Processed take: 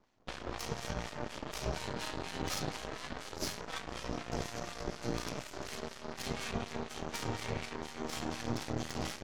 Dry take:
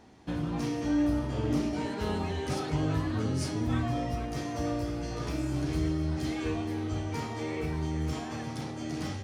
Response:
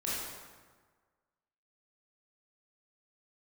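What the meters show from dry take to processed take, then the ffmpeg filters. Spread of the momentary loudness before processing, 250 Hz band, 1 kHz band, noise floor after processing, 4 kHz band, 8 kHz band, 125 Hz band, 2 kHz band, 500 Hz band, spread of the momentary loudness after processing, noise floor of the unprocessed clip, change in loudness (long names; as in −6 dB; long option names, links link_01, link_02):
6 LU, −12.0 dB, −3.5 dB, −49 dBFS, +1.0 dB, +1.5 dB, −11.5 dB, −1.0 dB, −6.0 dB, 5 LU, −38 dBFS, −8.0 dB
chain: -filter_complex "[0:a]afftfilt=real='re*lt(hypot(re,im),0.112)':imag='im*lt(hypot(re,im),0.112)':win_size=1024:overlap=0.75,acrossover=split=230|3000[link_01][link_02][link_03];[link_02]acompressor=threshold=-40dB:ratio=10[link_04];[link_01][link_04][link_03]amix=inputs=3:normalize=0,acrossover=split=790[link_05][link_06];[link_05]aeval=exprs='val(0)*(1-0.7/2+0.7/2*cos(2*PI*4.1*n/s))':channel_layout=same[link_07];[link_06]aeval=exprs='val(0)*(1-0.7/2-0.7/2*cos(2*PI*4.1*n/s))':channel_layout=same[link_08];[link_07][link_08]amix=inputs=2:normalize=0,aresample=16000,aresample=44100,aeval=exprs='0.0335*(cos(1*acos(clip(val(0)/0.0335,-1,1)))-cos(1*PI/2))+0.00119*(cos(3*acos(clip(val(0)/0.0335,-1,1)))-cos(3*PI/2))+0.000944*(cos(5*acos(clip(val(0)/0.0335,-1,1)))-cos(5*PI/2))+0.00335*(cos(6*acos(clip(val(0)/0.0335,-1,1)))-cos(6*PI/2))+0.00531*(cos(7*acos(clip(val(0)/0.0335,-1,1)))-cos(7*PI/2))':channel_layout=same,volume=7dB"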